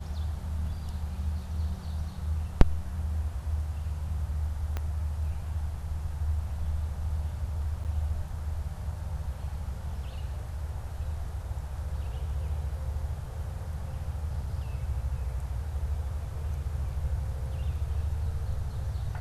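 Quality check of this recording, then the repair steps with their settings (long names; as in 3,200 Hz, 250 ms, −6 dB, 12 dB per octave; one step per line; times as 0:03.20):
0:04.77: click −19 dBFS
0:07.84–0:07.85: drop-out 8.5 ms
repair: click removal
repair the gap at 0:07.84, 8.5 ms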